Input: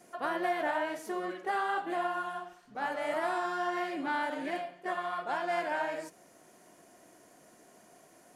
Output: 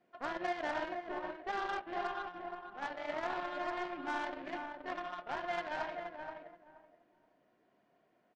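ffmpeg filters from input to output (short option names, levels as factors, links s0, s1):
-filter_complex "[0:a]lowpass=f=3700:w=0.5412,lowpass=f=3700:w=1.3066,aeval=exprs='0.106*(cos(1*acos(clip(val(0)/0.106,-1,1)))-cos(1*PI/2))+0.00473*(cos(3*acos(clip(val(0)/0.106,-1,1)))-cos(3*PI/2))+0.00841*(cos(7*acos(clip(val(0)/0.106,-1,1)))-cos(7*PI/2))':c=same,asplit=2[s0][s1];[s1]adelay=476,lowpass=f=1400:p=1,volume=0.596,asplit=2[s2][s3];[s3]adelay=476,lowpass=f=1400:p=1,volume=0.22,asplit=2[s4][s5];[s5]adelay=476,lowpass=f=1400:p=1,volume=0.22[s6];[s2][s4][s6]amix=inputs=3:normalize=0[s7];[s0][s7]amix=inputs=2:normalize=0,volume=0.596"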